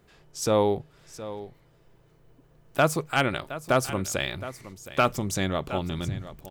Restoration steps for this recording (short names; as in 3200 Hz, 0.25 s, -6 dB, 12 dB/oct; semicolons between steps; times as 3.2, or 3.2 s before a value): clip repair -11 dBFS; inverse comb 0.717 s -14.5 dB